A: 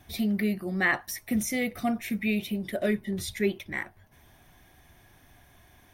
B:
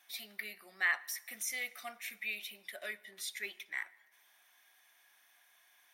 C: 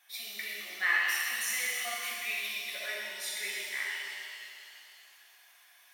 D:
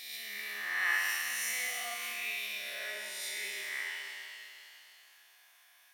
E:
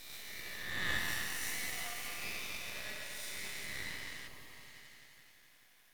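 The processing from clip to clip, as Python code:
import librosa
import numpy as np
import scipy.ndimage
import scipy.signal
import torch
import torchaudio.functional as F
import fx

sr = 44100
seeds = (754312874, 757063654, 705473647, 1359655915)

y1 = scipy.signal.sosfilt(scipy.signal.butter(2, 1300.0, 'highpass', fs=sr, output='sos'), x)
y1 = fx.rev_plate(y1, sr, seeds[0], rt60_s=1.2, hf_ratio=0.85, predelay_ms=0, drr_db=19.0)
y1 = y1 * librosa.db_to_amplitude(-4.5)
y2 = fx.low_shelf(y1, sr, hz=250.0, db=-11.5)
y2 = fx.rev_shimmer(y2, sr, seeds[1], rt60_s=2.6, semitones=7, shimmer_db=-8, drr_db=-5.5)
y3 = fx.spec_swells(y2, sr, rise_s=1.37)
y3 = y3 * librosa.db_to_amplitude(-5.5)
y4 = fx.echo_heads(y3, sr, ms=86, heads='second and third', feedback_pct=64, wet_db=-9.0)
y4 = np.maximum(y4, 0.0)
y4 = fx.spec_repair(y4, sr, seeds[2], start_s=4.3, length_s=0.4, low_hz=1300.0, high_hz=10000.0, source='after')
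y4 = y4 * librosa.db_to_amplitude(-1.5)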